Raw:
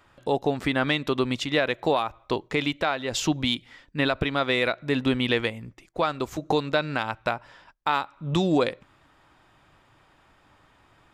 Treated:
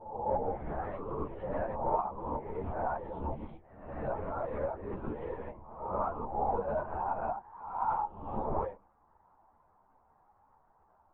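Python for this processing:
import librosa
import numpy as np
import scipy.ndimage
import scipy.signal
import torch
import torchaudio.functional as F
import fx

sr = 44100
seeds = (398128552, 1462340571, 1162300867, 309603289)

y = fx.spec_swells(x, sr, rise_s=0.82)
y = fx.low_shelf(y, sr, hz=220.0, db=-11.0)
y = np.clip(y, -10.0 ** (-19.5 / 20.0), 10.0 ** (-19.5 / 20.0))
y = fx.ladder_lowpass(y, sr, hz=1000.0, resonance_pct=60)
y = fx.doubler(y, sr, ms=18.0, db=-2)
y = fx.lpc_vocoder(y, sr, seeds[0], excitation='whisper', order=10)
y = fx.ensemble(y, sr)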